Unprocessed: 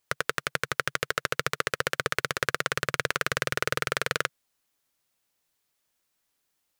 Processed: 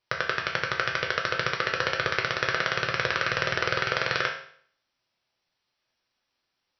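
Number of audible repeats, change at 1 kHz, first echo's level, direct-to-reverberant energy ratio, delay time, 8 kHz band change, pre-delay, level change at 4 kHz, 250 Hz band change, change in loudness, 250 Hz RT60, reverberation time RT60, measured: no echo, +2.5 dB, no echo, 0.0 dB, no echo, -8.0 dB, 4 ms, +2.5 dB, +1.5 dB, +2.5 dB, 0.55 s, 0.55 s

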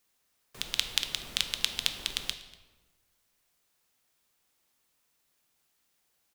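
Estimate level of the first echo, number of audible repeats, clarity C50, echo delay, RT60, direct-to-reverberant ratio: -22.5 dB, 1, 10.5 dB, 241 ms, 1.3 s, 8.0 dB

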